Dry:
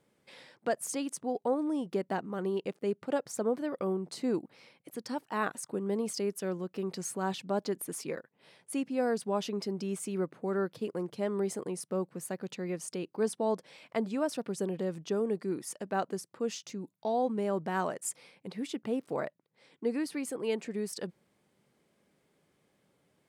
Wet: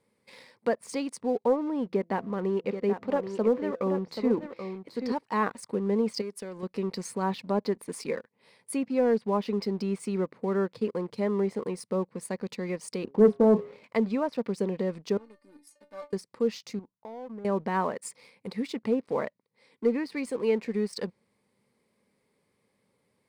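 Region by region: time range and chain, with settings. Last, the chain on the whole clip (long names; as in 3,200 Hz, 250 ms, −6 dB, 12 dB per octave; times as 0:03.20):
0:01.86–0:05.12: low-pass filter 4,100 Hz + hum removal 168 Hz, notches 4 + single-tap delay 782 ms −8.5 dB
0:06.21–0:06.63: low-shelf EQ 140 Hz −10 dB + downward compressor 4 to 1, threshold −38 dBFS
0:13.04–0:13.84: tilt shelving filter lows +10 dB, about 920 Hz + double-tracking delay 29 ms −9 dB + hum removal 137.7 Hz, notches 10
0:15.17–0:16.13: mu-law and A-law mismatch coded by A + upward compression, threshold −37 dBFS + stiff-string resonator 290 Hz, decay 0.22 s, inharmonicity 0.002
0:16.79–0:17.45: downward compressor 3 to 1, threshold −37 dBFS + transistor ladder low-pass 1,700 Hz, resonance 35%
whole clip: treble cut that deepens with the level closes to 2,400 Hz, closed at −27 dBFS; EQ curve with evenly spaced ripples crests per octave 0.92, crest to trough 7 dB; leveller curve on the samples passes 1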